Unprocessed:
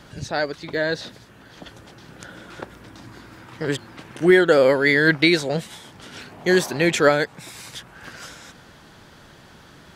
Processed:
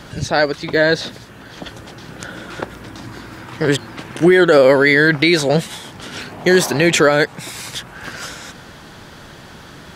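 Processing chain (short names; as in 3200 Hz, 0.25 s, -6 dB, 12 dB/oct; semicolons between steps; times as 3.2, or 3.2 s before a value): limiter -11.5 dBFS, peak gain reduction 7.5 dB; gain +9 dB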